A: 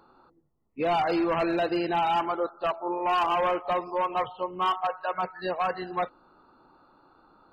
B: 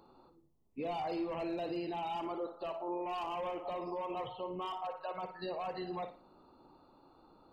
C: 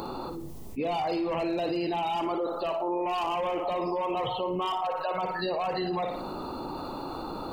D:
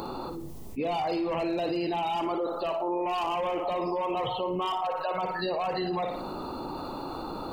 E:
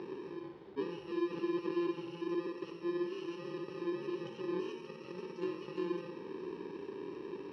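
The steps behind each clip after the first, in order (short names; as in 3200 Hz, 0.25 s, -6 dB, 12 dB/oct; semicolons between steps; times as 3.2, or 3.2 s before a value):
bell 1500 Hz -13 dB 0.74 oct; limiter -31 dBFS, peak gain reduction 11 dB; on a send: flutter echo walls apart 9.8 m, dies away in 0.34 s; on the sum: gain -1 dB
high shelf 4600 Hz +5.5 dB; fast leveller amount 70%; gain +6 dB
nothing audible
FFT order left unsorted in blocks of 64 samples; speaker cabinet 240–2800 Hz, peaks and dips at 250 Hz -6 dB, 390 Hz +9 dB, 620 Hz -4 dB, 1100 Hz -5 dB, 1600 Hz -7 dB, 2400 Hz -10 dB; split-band echo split 340 Hz, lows 0.594 s, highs 92 ms, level -10 dB; gain -2.5 dB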